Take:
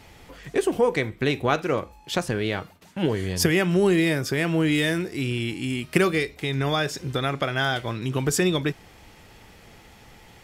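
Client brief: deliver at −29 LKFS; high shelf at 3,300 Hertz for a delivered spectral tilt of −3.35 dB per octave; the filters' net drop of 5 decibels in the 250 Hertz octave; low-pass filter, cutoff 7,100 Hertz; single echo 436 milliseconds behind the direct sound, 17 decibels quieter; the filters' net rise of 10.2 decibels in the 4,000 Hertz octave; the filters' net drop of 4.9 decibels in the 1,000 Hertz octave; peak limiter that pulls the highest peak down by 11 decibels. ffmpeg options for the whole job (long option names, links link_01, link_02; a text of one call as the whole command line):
ffmpeg -i in.wav -af "lowpass=7100,equalizer=frequency=250:width_type=o:gain=-7.5,equalizer=frequency=1000:width_type=o:gain=-8,highshelf=frequency=3300:gain=7.5,equalizer=frequency=4000:width_type=o:gain=8.5,alimiter=limit=-13.5dB:level=0:latency=1,aecho=1:1:436:0.141,volume=-4.5dB" out.wav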